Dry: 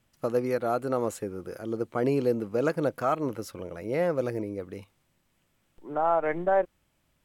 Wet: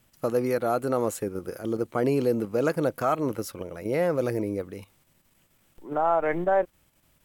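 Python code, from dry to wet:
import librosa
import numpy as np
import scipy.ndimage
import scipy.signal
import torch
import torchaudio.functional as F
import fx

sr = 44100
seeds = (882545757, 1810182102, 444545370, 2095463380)

p1 = fx.level_steps(x, sr, step_db=18)
p2 = x + F.gain(torch.from_numpy(p1), 2.0).numpy()
p3 = fx.high_shelf(p2, sr, hz=9600.0, db=10.0)
y = F.gain(torch.from_numpy(p3), -1.0).numpy()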